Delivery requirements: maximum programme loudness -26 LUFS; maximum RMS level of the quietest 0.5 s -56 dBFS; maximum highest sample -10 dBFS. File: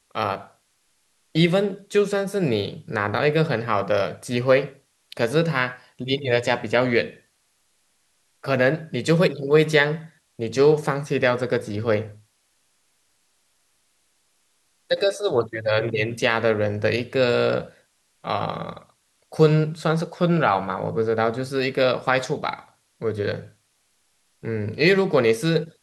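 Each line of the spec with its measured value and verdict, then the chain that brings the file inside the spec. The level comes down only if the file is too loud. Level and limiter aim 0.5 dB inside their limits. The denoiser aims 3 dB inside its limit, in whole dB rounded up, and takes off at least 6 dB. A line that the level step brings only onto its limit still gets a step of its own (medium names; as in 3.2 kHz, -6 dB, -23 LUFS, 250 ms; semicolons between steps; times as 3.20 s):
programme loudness -22.0 LUFS: fail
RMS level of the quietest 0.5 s -67 dBFS: pass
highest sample -3.0 dBFS: fail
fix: trim -4.5 dB; peak limiter -10.5 dBFS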